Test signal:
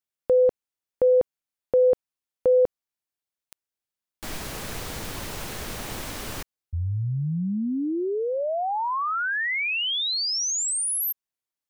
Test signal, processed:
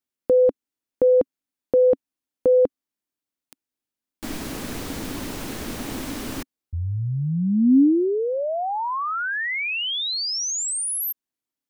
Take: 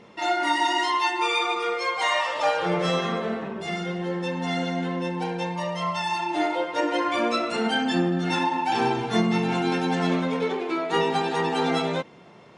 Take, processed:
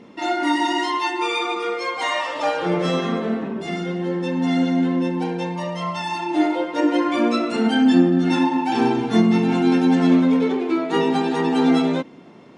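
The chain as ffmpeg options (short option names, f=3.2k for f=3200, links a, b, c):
-af "equalizer=f=270:t=o:w=0.74:g=13"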